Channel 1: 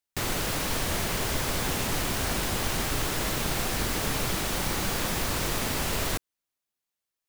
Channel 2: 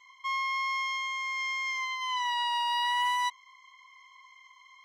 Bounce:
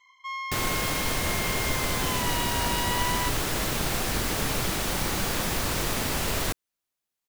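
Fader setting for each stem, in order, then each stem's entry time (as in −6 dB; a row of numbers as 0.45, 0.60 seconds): +1.0, −3.0 decibels; 0.35, 0.00 seconds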